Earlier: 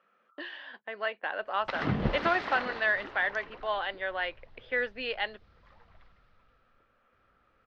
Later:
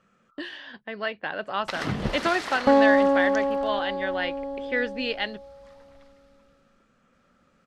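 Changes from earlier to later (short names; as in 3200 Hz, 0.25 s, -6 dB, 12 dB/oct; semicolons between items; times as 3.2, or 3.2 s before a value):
speech: remove HPF 520 Hz 12 dB/oct; second sound: unmuted; master: remove air absorption 270 m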